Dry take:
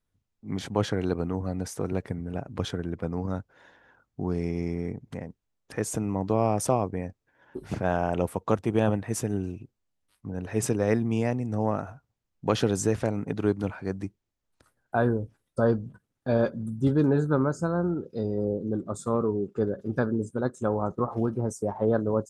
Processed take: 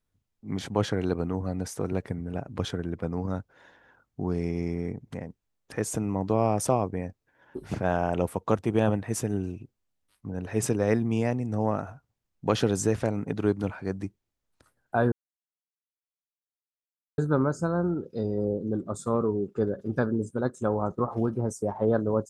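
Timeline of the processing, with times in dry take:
15.12–17.18 mute

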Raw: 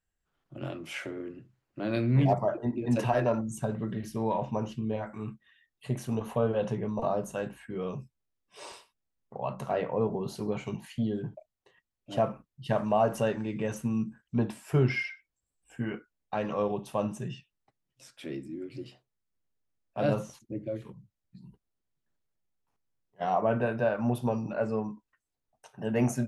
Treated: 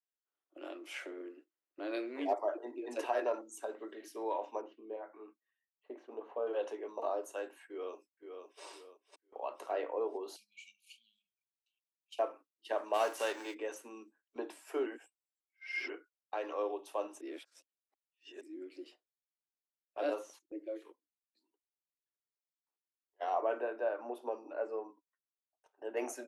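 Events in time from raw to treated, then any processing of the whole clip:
4.61–6.47 tape spacing loss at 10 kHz 42 dB
7.66–8.64 echo throw 0.51 s, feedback 40%, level -6.5 dB
10.36–12.19 brick-wall FIR band-stop 200–2200 Hz
12.93–13.53 spectral whitening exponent 0.6
14.86–15.9 reverse
17.21–18.41 reverse
20.92–21.43 three-band expander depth 100%
23.61–25.97 high shelf 2300 Hz -11 dB
whole clip: steep high-pass 290 Hz 72 dB/oct; gate -52 dBFS, range -10 dB; gain -6 dB

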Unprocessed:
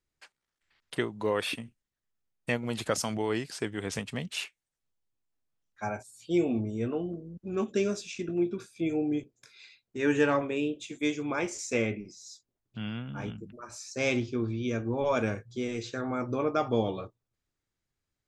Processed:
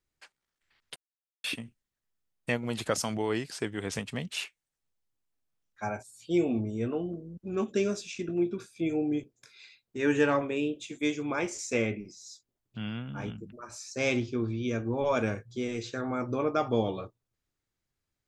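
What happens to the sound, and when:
0.96–1.44 mute

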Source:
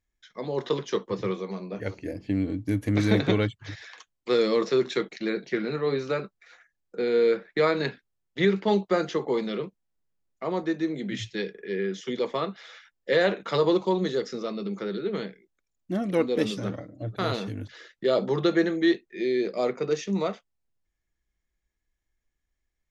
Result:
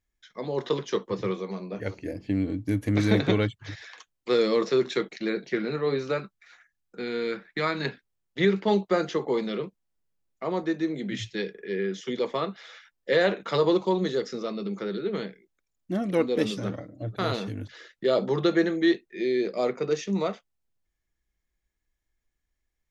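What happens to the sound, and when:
6.18–7.85 bell 490 Hz -10 dB 0.89 oct

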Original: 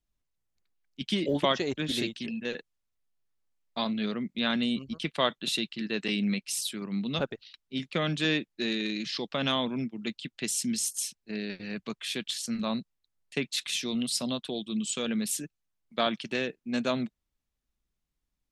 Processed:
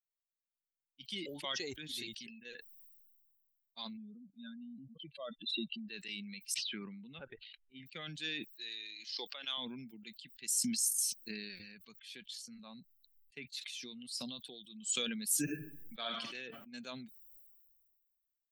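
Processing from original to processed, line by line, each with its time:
3.97–5.89 spectral contrast raised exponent 2.5
6.54–7.86 LPF 3000 Hz 24 dB/oct
8.53–9.58 HPF 420 Hz
12.01–14.21 high shelf 5100 Hz -10.5 dB
15.43–16.3 reverb throw, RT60 1 s, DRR 3 dB
whole clip: per-bin expansion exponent 1.5; pre-emphasis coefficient 0.9; sustainer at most 31 dB/s

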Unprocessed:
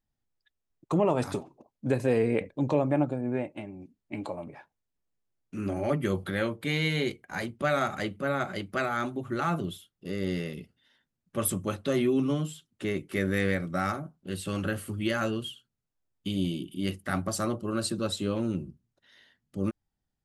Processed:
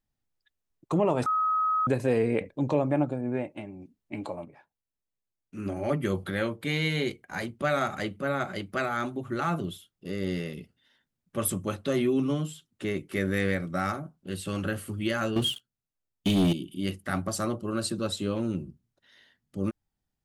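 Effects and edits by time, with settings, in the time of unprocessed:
1.26–1.87 bleep 1270 Hz -22.5 dBFS
4.45–5.89 upward expander, over -42 dBFS
15.36–16.53 sample leveller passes 3

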